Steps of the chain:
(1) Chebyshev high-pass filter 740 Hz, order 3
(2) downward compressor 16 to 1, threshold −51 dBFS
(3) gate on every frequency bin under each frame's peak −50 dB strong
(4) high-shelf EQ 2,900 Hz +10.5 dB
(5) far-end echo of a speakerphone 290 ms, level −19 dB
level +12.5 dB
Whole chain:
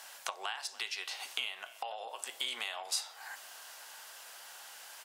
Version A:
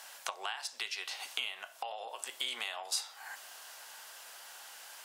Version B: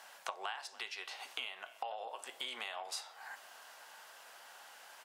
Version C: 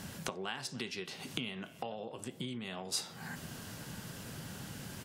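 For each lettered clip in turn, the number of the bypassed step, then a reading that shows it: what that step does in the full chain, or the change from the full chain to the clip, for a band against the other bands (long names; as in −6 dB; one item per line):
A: 5, echo-to-direct ratio −27.5 dB to none audible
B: 4, 8 kHz band −8.0 dB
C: 1, 250 Hz band +26.5 dB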